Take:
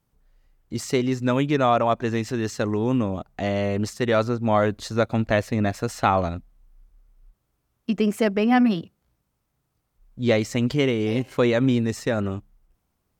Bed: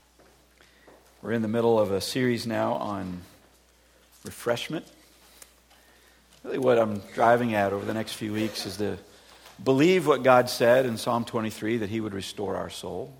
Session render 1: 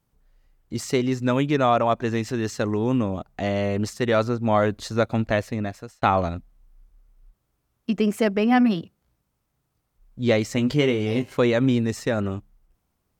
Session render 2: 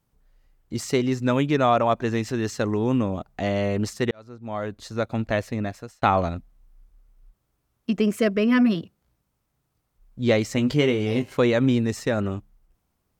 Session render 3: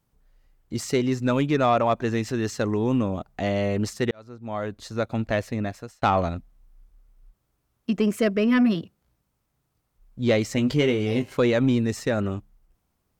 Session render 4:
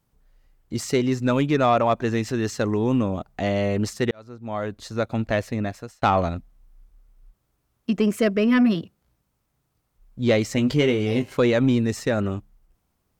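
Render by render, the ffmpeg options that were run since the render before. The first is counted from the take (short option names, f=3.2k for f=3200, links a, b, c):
-filter_complex "[0:a]asettb=1/sr,asplit=3[a][b][c];[a]atrim=end=10.554[d];[b]atrim=start=10.55:end=11.33,asetpts=PTS-STARTPTS,afade=t=in:d=0.004:c=qsin,afade=t=out:st=0.776:d=0.004:c=qsin,asplit=2[e][f];[f]adelay=20,volume=-8dB[g];[e][g]amix=inputs=2:normalize=0,atrim=end_sample=34398[h];[c]atrim=start=11.326[i];[d][h]acrossfade=d=0.004:c1=hsin:c2=qsin[j];[j][i]acrossfade=d=0.004:c1=qsin:c2=hsin,asplit=2[k][l];[k]atrim=end=6.02,asetpts=PTS-STARTPTS,afade=t=out:st=4.97:d=1.05:c=qsin[m];[l]atrim=start=6.02,asetpts=PTS-STARTPTS,afade=t=in:d=0.004:c=hsin[n];[m][n]concat=n=2:v=0:a=1"
-filter_complex "[0:a]asettb=1/sr,asplit=3[a][b][c];[a]atrim=end=8.114[d];[b]atrim=start=8.11:end=8.75,asetpts=PTS-STARTPTS,afade=t=in:d=0.004:c=qsin,afade=t=out:st=0.636:d=0.004:c=qsin,asuperstop=centerf=820:order=20:qfactor=4[e];[c]atrim=start=8.746[f];[d][e]acrossfade=d=0.004:c1=hsin:c2=qsin[g];[g][f]acrossfade=d=0.004:c1=qsin:c2=hsin,asplit=2[h][i];[h]atrim=end=4.11,asetpts=PTS-STARTPTS,afade=t=out:st=4.106:d=0.004:c=hsin[j];[i]atrim=start=4.11,asetpts=PTS-STARTPTS,afade=t=in:d=1.5[k];[j][k]concat=n=2:v=0:a=1"
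-af "asoftclip=type=tanh:threshold=-9.5dB"
-af "volume=1.5dB"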